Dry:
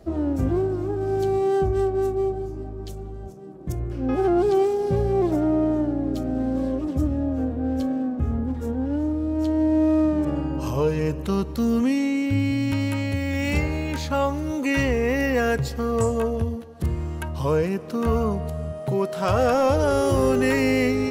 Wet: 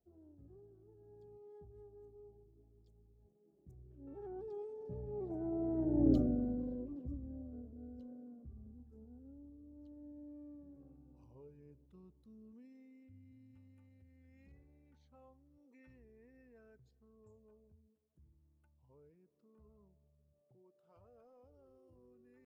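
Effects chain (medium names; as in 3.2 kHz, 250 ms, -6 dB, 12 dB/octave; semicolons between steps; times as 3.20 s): resonances exaggerated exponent 1.5; Doppler pass-by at 5.76 s, 21 m/s, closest 2 m; tempo 0.94×; trim -1.5 dB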